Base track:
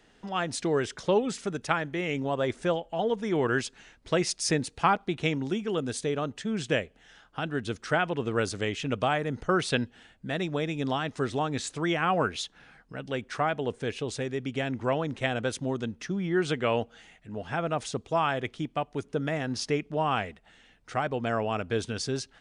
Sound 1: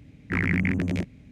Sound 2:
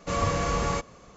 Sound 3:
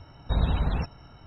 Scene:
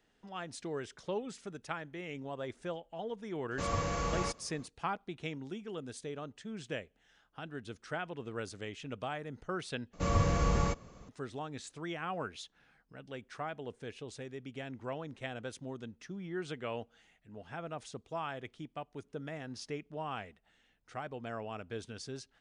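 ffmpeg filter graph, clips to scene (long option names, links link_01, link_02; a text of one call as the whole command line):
ffmpeg -i bed.wav -i cue0.wav -i cue1.wav -filter_complex "[2:a]asplit=2[link_01][link_02];[0:a]volume=-12.5dB[link_03];[link_02]lowshelf=frequency=280:gain=8.5[link_04];[link_03]asplit=2[link_05][link_06];[link_05]atrim=end=9.934[link_07];[link_04]atrim=end=1.16,asetpts=PTS-STARTPTS,volume=-7dB[link_08];[link_06]atrim=start=11.086[link_09];[link_01]atrim=end=1.16,asetpts=PTS-STARTPTS,volume=-7.5dB,afade=type=in:duration=0.004:curve=hsin,afade=type=out:start_time=1.156:duration=0.004:curve=hsin,adelay=3510[link_10];[link_07][link_08]acrossfade=duration=0.004:curve1=hsin:curve2=hsin[link_11];[link_11][link_09]acrossfade=duration=0.004:curve1=hsin:curve2=hsin[link_12];[link_12][link_10]amix=inputs=2:normalize=0" out.wav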